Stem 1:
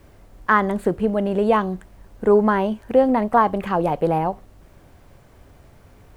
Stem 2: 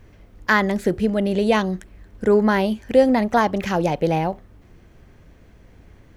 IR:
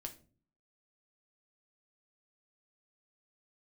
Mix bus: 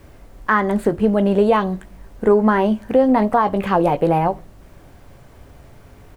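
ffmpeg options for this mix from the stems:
-filter_complex "[0:a]volume=2.5dB,asplit=2[link_01][link_02];[link_02]volume=-9dB[link_03];[1:a]lowpass=3500,asplit=2[link_04][link_05];[link_05]afreqshift=-0.5[link_06];[link_04][link_06]amix=inputs=2:normalize=1,volume=-1,adelay=16,volume=-4dB[link_07];[2:a]atrim=start_sample=2205[link_08];[link_03][link_08]afir=irnorm=-1:irlink=0[link_09];[link_01][link_07][link_09]amix=inputs=3:normalize=0,alimiter=limit=-5.5dB:level=0:latency=1:release=231"

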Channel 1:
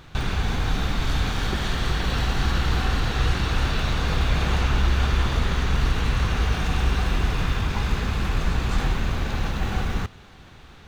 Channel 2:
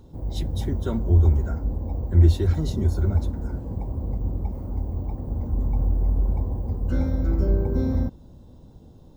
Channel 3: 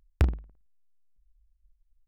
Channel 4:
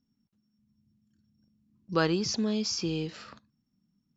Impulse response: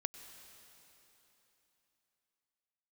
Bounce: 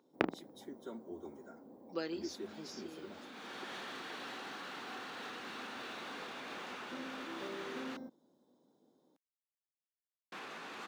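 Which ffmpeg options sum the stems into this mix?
-filter_complex "[0:a]acompressor=threshold=-24dB:ratio=6,asplit=2[link_01][link_02];[link_02]highpass=frequency=720:poles=1,volume=15dB,asoftclip=type=tanh:threshold=-33dB[link_03];[link_01][link_03]amix=inputs=2:normalize=0,lowpass=frequency=3000:poles=1,volume=-6dB,adelay=2100,volume=-9dB,asplit=3[link_04][link_05][link_06];[link_04]atrim=end=7.97,asetpts=PTS-STARTPTS,afade=type=out:start_time=7.966:duration=0.004:curve=hsin[link_07];[link_05]atrim=start=7.97:end=10.32,asetpts=PTS-STARTPTS,volume=0[link_08];[link_06]atrim=start=10.32,asetpts=PTS-STARTPTS,afade=type=in:duration=0.004:curve=hsin[link_09];[link_07][link_08][link_09]concat=n=3:v=0:a=1[link_10];[1:a]bandreject=frequency=2700:width=6.1,volume=-15.5dB[link_11];[2:a]lowpass=3100,volume=3dB[link_12];[3:a]aecho=1:1:5.8:0.89,volume=-13.5dB,afade=type=out:start_time=1.84:duration=0.57:silence=0.375837,asplit=2[link_13][link_14];[link_14]apad=whole_len=572359[link_15];[link_10][link_15]sidechaincompress=threshold=-59dB:ratio=5:attack=16:release=612[link_16];[link_16][link_11][link_12][link_13]amix=inputs=4:normalize=0,highpass=frequency=250:width=0.5412,highpass=frequency=250:width=1.3066"

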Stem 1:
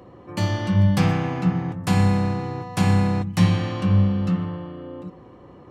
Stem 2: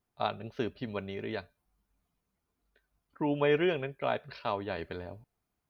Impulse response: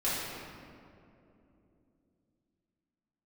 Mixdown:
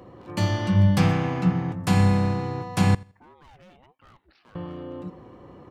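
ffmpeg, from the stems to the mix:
-filter_complex "[0:a]volume=-0.5dB,asplit=3[link_01][link_02][link_03];[link_01]atrim=end=2.95,asetpts=PTS-STARTPTS,afade=type=out:start_time=2.946:duration=0.004:curve=hsin[link_04];[link_02]atrim=start=2.95:end=4.55,asetpts=PTS-STARTPTS,volume=0[link_05];[link_03]atrim=start=4.55,asetpts=PTS-STARTPTS,afade=type=in:duration=0.004:curve=hsin[link_06];[link_04][link_05][link_06]concat=n=3:v=0:a=1,asplit=2[link_07][link_08];[link_08]volume=-23dB[link_09];[1:a]volume=29.5dB,asoftclip=hard,volume=-29.5dB,alimiter=level_in=17.5dB:limit=-24dB:level=0:latency=1:release=224,volume=-17.5dB,aeval=exprs='val(0)*sin(2*PI*430*n/s+430*0.6/1.5*sin(2*PI*1.5*n/s))':channel_layout=same,volume=-4.5dB[link_10];[link_09]aecho=0:1:83|166|249|332:1|0.24|0.0576|0.0138[link_11];[link_07][link_10][link_11]amix=inputs=3:normalize=0"

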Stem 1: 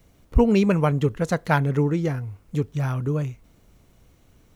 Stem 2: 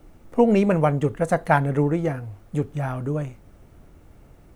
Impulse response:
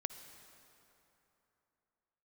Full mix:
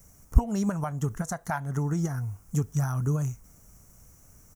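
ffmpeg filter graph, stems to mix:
-filter_complex "[0:a]firequalizer=gain_entry='entry(180,0);entry(300,-7);entry(1300,0);entry(3600,-16);entry(5800,11)':delay=0.05:min_phase=1,volume=0.5dB[link_01];[1:a]highpass=frequency=520:width=0.5412,highpass=frequency=520:width=1.3066,volume=-14dB,asplit=2[link_02][link_03];[link_03]apad=whole_len=205212[link_04];[link_01][link_04]sidechaincompress=threshold=-45dB:ratio=8:attack=7.8:release=198[link_05];[link_05][link_02]amix=inputs=2:normalize=0"

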